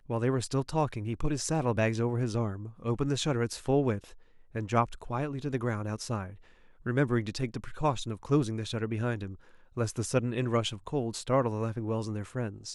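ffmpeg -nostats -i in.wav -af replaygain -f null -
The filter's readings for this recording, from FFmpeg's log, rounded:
track_gain = +11.1 dB
track_peak = 0.176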